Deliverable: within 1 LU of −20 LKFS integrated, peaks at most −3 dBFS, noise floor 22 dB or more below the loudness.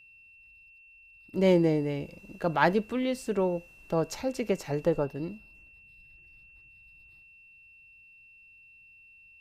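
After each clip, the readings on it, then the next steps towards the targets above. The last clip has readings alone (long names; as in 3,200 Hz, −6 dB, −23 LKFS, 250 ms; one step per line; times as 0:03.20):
interfering tone 2,700 Hz; level of the tone −53 dBFS; integrated loudness −28.5 LKFS; sample peak −8.0 dBFS; target loudness −20.0 LKFS
→ notch filter 2,700 Hz, Q 30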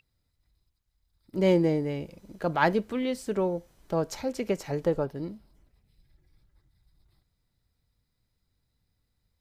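interfering tone none found; integrated loudness −28.5 LKFS; sample peak −8.0 dBFS; target loudness −20.0 LKFS
→ level +8.5 dB
brickwall limiter −3 dBFS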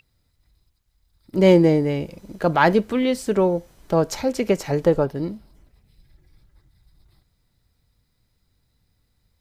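integrated loudness −20.5 LKFS; sample peak −3.0 dBFS; background noise floor −69 dBFS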